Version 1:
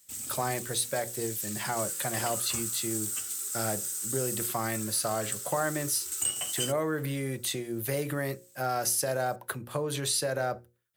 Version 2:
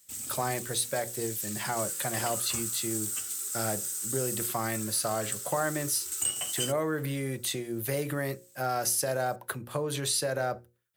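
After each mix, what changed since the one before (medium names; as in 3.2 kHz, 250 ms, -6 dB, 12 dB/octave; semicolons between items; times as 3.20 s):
no change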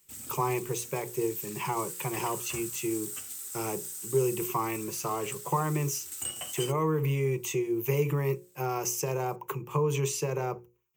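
speech: add rippled EQ curve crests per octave 0.74, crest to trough 18 dB; second sound -7.5 dB; master: add peaking EQ 6.7 kHz -6.5 dB 2.5 oct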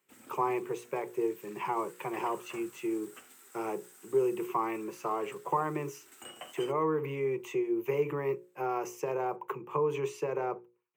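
master: add three-band isolator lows -23 dB, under 210 Hz, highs -18 dB, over 2.5 kHz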